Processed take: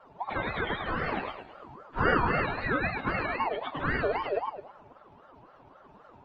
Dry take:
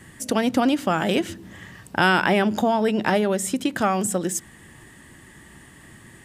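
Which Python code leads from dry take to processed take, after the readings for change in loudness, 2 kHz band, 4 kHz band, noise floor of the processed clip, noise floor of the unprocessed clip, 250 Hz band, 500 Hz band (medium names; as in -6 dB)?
-8.0 dB, -5.0 dB, -12.0 dB, -56 dBFS, -48 dBFS, -14.0 dB, -8.5 dB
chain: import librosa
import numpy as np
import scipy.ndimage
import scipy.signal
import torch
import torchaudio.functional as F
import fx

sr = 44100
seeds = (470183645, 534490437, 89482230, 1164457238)

y = fx.octave_mirror(x, sr, pivot_hz=840.0)
y = scipy.signal.sosfilt(scipy.signal.butter(2, 1200.0, 'lowpass', fs=sr, output='sos'), y)
y = fx.low_shelf(y, sr, hz=310.0, db=-9.5)
y = fx.echo_feedback(y, sr, ms=107, feedback_pct=40, wet_db=-4)
y = fx.ring_lfo(y, sr, carrier_hz=740.0, swing_pct=35, hz=3.8)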